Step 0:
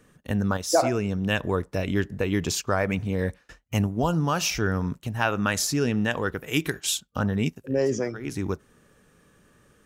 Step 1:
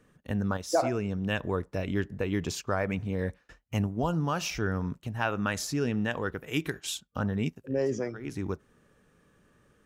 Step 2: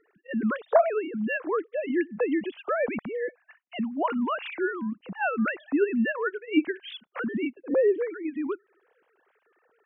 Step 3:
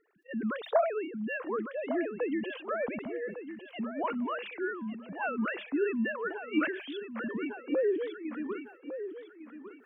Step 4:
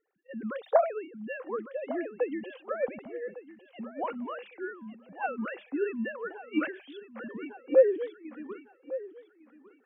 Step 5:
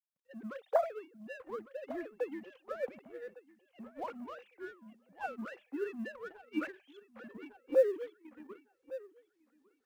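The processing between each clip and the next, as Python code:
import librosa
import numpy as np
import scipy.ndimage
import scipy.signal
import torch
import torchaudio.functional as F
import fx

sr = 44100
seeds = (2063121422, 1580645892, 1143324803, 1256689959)

y1 = fx.high_shelf(x, sr, hz=4300.0, db=-6.5)
y1 = y1 * 10.0 ** (-4.5 / 20.0)
y2 = fx.sine_speech(y1, sr)
y2 = y2 * 10.0 ** (3.0 / 20.0)
y3 = fx.echo_feedback(y2, sr, ms=1154, feedback_pct=26, wet_db=-10.5)
y3 = fx.sustainer(y3, sr, db_per_s=93.0)
y3 = y3 * 10.0 ** (-6.5 / 20.0)
y4 = fx.small_body(y3, sr, hz=(530.0, 770.0), ring_ms=45, db=9)
y4 = fx.upward_expand(y4, sr, threshold_db=-43.0, expansion=1.5)
y4 = y4 * 10.0 ** (3.0 / 20.0)
y5 = fx.law_mismatch(y4, sr, coded='A')
y5 = y5 * 10.0 ** (-6.0 / 20.0)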